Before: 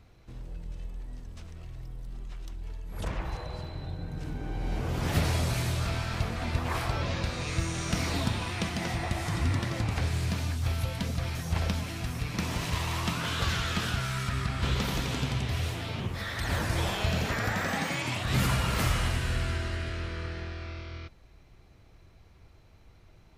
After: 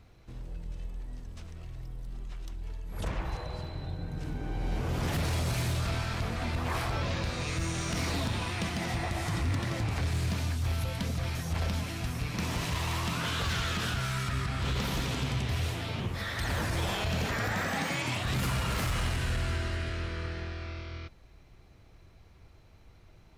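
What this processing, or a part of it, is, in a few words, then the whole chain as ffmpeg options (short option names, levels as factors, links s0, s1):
limiter into clipper: -af "alimiter=limit=0.0944:level=0:latency=1:release=41,asoftclip=type=hard:threshold=0.0562"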